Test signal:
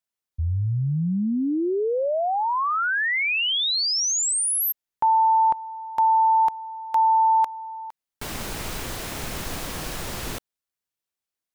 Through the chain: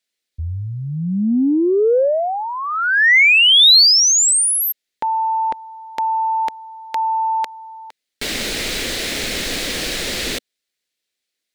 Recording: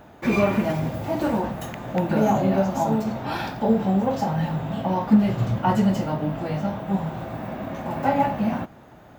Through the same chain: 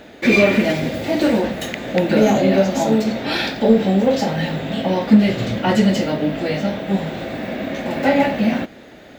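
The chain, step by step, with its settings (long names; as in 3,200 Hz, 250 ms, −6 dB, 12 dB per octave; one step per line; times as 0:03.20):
octave-band graphic EQ 125/250/500/1,000/2,000/4,000/8,000 Hz −6/+6/+8/−8/+10/+11/+5 dB
in parallel at −6 dB: soft clipping −9 dBFS
on the sum: level −1.5 dB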